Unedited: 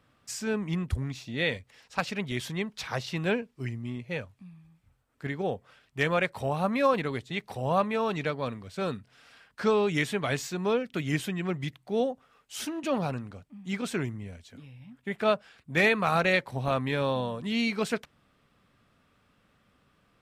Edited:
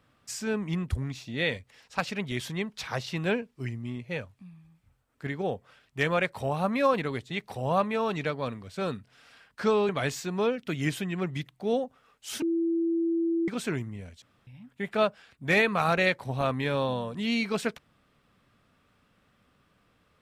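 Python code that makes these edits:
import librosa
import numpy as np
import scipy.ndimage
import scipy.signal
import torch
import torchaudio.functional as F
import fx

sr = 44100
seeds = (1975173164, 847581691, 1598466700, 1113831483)

y = fx.edit(x, sr, fx.cut(start_s=9.89, length_s=0.27),
    fx.bleep(start_s=12.69, length_s=1.06, hz=333.0, db=-23.5),
    fx.room_tone_fill(start_s=14.49, length_s=0.25), tone=tone)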